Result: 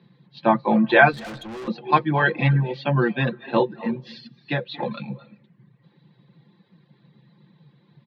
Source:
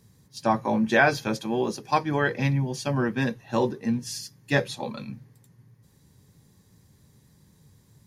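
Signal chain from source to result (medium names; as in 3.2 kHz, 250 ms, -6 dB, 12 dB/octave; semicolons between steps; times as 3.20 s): 3.62–4.83 s: compression 5:1, threshold -26 dBFS, peak gain reduction 9.5 dB; comb 5.8 ms, depth 52%; on a send at -12.5 dB: reverberation RT60 0.70 s, pre-delay 213 ms; on the sum: reverb removal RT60 0.68 s; Chebyshev band-pass 130–4000 Hz, order 5; 1.12–1.68 s: valve stage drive 38 dB, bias 0.45; trim +5 dB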